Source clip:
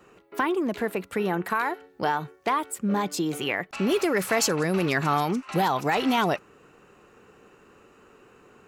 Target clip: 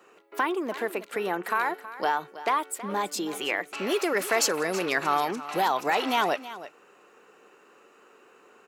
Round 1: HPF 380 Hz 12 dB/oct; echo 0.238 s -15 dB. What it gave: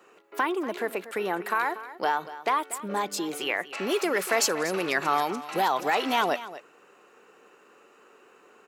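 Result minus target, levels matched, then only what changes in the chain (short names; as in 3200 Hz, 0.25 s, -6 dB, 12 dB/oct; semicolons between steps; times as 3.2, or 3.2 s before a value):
echo 85 ms early
change: echo 0.323 s -15 dB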